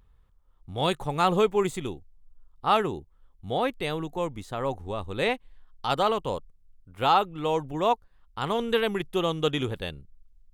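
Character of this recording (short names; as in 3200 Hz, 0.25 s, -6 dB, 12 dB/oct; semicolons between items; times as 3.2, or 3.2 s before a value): noise floor -61 dBFS; spectral tilt -3.5 dB/oct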